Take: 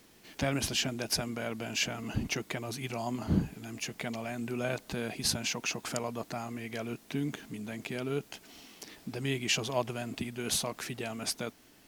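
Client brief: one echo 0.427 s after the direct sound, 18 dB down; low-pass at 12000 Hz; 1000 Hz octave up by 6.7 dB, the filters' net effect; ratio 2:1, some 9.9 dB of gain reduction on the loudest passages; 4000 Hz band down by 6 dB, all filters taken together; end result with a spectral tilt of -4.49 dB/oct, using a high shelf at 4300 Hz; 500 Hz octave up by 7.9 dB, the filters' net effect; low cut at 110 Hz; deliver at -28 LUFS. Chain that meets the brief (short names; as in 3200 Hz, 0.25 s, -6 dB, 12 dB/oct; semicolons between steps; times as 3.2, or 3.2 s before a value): HPF 110 Hz; LPF 12000 Hz; bell 500 Hz +8.5 dB; bell 1000 Hz +6 dB; bell 4000 Hz -6.5 dB; high shelf 4300 Hz -4 dB; compressor 2:1, threshold -36 dBFS; echo 0.427 s -18 dB; gain +9.5 dB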